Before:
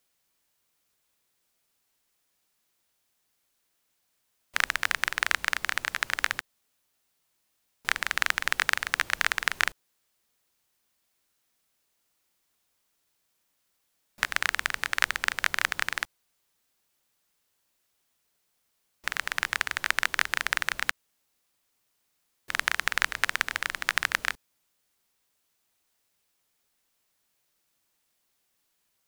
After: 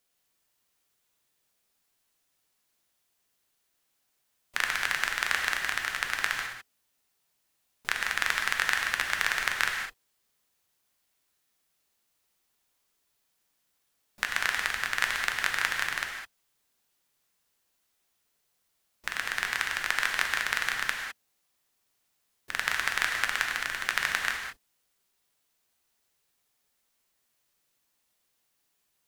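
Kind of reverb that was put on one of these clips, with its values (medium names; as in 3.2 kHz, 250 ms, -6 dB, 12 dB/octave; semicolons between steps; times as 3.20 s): gated-style reverb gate 230 ms flat, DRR 1.5 dB; trim -3 dB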